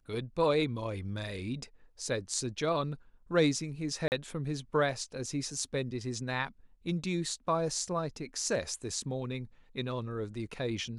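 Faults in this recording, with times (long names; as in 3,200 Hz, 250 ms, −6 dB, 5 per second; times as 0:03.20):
0:04.08–0:04.12: drop-out 39 ms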